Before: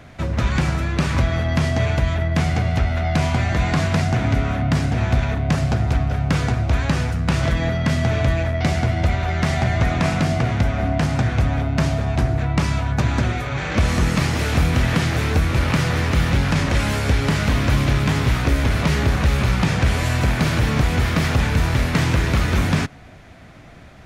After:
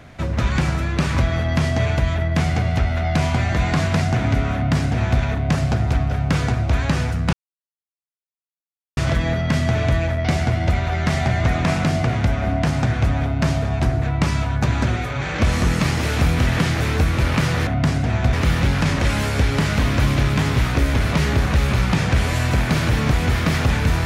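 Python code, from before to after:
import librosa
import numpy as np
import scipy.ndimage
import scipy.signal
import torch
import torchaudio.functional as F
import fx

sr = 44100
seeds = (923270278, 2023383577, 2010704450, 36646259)

y = fx.edit(x, sr, fx.duplicate(start_s=4.55, length_s=0.66, to_s=16.03),
    fx.insert_silence(at_s=7.33, length_s=1.64), tone=tone)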